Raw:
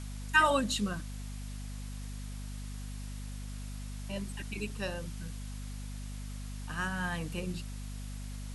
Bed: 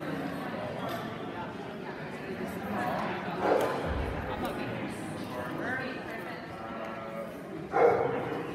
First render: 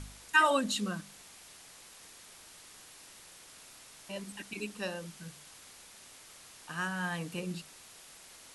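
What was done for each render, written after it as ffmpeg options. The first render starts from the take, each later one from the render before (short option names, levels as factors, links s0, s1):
-af "bandreject=f=50:t=h:w=4,bandreject=f=100:t=h:w=4,bandreject=f=150:t=h:w=4,bandreject=f=200:t=h:w=4,bandreject=f=250:t=h:w=4"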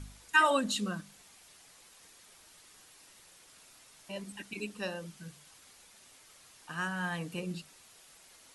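-af "afftdn=nr=6:nf=-54"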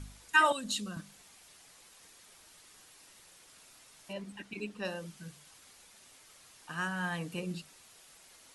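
-filter_complex "[0:a]asettb=1/sr,asplit=3[s0][s1][s2];[s0]atrim=end=0.524[s3];[s1]atrim=start=0.52:end=0.97,asetpts=PTS-STARTPTS,afade=t=in:d=0.004:c=qsin,afade=t=out:st=0.446:d=0.004:c=qsin,acrossover=split=150|3000[s4][s5][s6];[s5]acompressor=threshold=0.00794:ratio=4:attack=3.2:release=140:knee=2.83:detection=peak[s7];[s4][s7][s6]amix=inputs=3:normalize=0[s8];[s2]atrim=start=0.966[s9];[s3][s8]acrossfade=d=0.004:c1=hsin:c2=qsin[s10];[s10][s9]acrossfade=d=0.004:c1=qsin:c2=hsin,asettb=1/sr,asplit=3[s11][s12][s13];[s11]atrim=end=4.134[s14];[s12]atrim=start=4.13:end=4.85,asetpts=PTS-STARTPTS,afade=t=in:d=0.004:c=qsin,afade=t=out:st=0.716:d=0.004:c=qsin,lowpass=f=3100:p=1[s15];[s13]atrim=start=4.846[s16];[s14][s15]acrossfade=d=0.004:c1=hsin:c2=qsin[s17];[s17][s16]acrossfade=d=0.004:c1=qsin:c2=hsin"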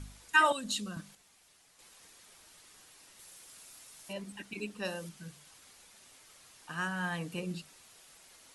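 -filter_complex "[0:a]asettb=1/sr,asplit=3[s0][s1][s2];[s0]atrim=end=3.194[s3];[s1]atrim=start=3.19:end=5.09,asetpts=PTS-STARTPTS,afade=t=in:d=0.004:c=qsin,afade=t=out:st=1.896:d=0.004:c=qsin,highshelf=f=6600:g=9[s4];[s2]atrim=start=5.086[s5];[s3][s4]acrossfade=d=0.004:c1=hsin:c2=qsin[s6];[s6][s5]acrossfade=d=0.004:c1=qsin:c2=hsin,asplit=3[s7][s8][s9];[s7]atrim=end=1.152[s10];[s8]atrim=start=1.148:end=1.792,asetpts=PTS-STARTPTS,volume=0.473[s11];[s9]atrim=start=1.788[s12];[s10][s11]acrossfade=d=0.004:c1=hsin:c2=hsin[s13];[s13][s12]acrossfade=d=0.004:c1=hsin:c2=hsin"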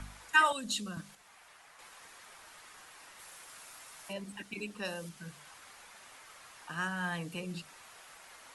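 -filter_complex "[0:a]acrossover=split=140|680|2100[s0][s1][s2][s3];[s1]alimiter=level_in=4.22:limit=0.0631:level=0:latency=1,volume=0.237[s4];[s2]acompressor=mode=upward:threshold=0.00562:ratio=2.5[s5];[s0][s4][s5][s3]amix=inputs=4:normalize=0"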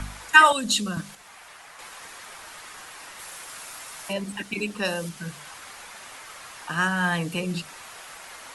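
-af "volume=3.76,alimiter=limit=0.891:level=0:latency=1"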